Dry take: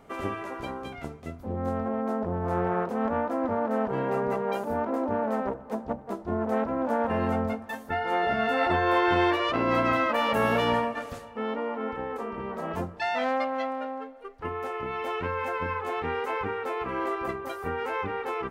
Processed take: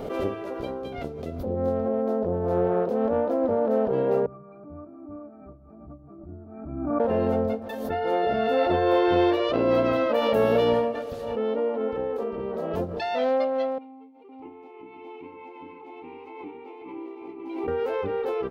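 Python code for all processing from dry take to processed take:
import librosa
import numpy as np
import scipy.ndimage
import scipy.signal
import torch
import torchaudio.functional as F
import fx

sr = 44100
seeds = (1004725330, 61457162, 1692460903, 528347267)

y = fx.chain(x, sr, fx.high_shelf(hz=3800.0, db=-11.0),
    fx.fixed_phaser(hz=1300.0, stages=4),
    fx.octave_resonator(note='D', decay_s=0.11), at=(4.26, 7.0))
y = fx.chain(y, sr, fx.vowel_filter(vowel='u'),
    fx.high_shelf(hz=2400.0, db=8.0),
    fx.echo_single(ms=507, db=-6.0), at=(13.78, 17.68))
y = fx.graphic_eq(y, sr, hz=(500, 1000, 2000, 4000, 8000), db=(9, -6, -7, 4, -9))
y = fx.pre_swell(y, sr, db_per_s=43.0)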